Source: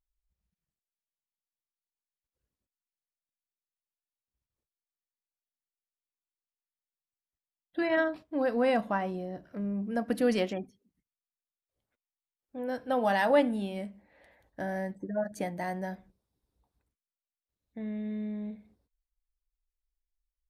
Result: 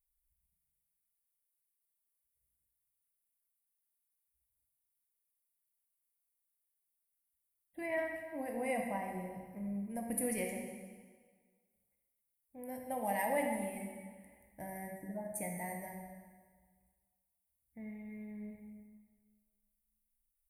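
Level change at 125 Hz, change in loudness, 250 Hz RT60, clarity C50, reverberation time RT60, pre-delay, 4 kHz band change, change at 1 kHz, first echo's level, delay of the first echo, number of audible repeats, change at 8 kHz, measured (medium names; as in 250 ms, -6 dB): -7.5 dB, -8.5 dB, 1.6 s, 3.0 dB, 1.6 s, 11 ms, -15.5 dB, -7.5 dB, no echo, no echo, no echo, no reading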